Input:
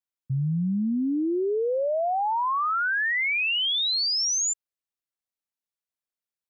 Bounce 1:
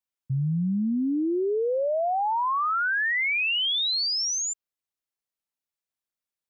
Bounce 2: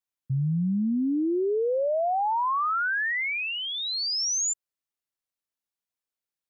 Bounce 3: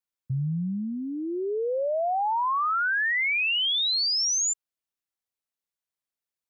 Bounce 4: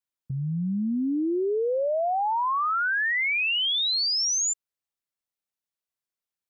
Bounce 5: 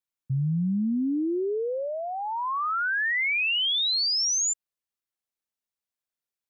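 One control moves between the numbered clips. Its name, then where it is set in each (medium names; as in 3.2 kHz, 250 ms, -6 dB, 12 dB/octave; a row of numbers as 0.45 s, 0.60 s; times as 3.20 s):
dynamic bell, frequency: 9.2 kHz, 3.2 kHz, 270 Hz, 100 Hz, 710 Hz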